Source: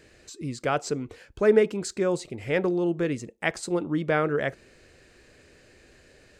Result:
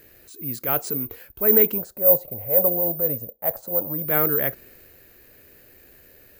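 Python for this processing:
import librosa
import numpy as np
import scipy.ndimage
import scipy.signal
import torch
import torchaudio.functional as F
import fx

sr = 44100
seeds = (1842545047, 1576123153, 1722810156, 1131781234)

y = fx.curve_eq(x, sr, hz=(120.0, 380.0, 550.0, 2100.0), db=(0, -10, 11, -15), at=(1.78, 4.05))
y = fx.transient(y, sr, attack_db=-6, sustain_db=2)
y = fx.high_shelf(y, sr, hz=4800.0, db=-5.0)
y = (np.kron(y[::3], np.eye(3)[0]) * 3)[:len(y)]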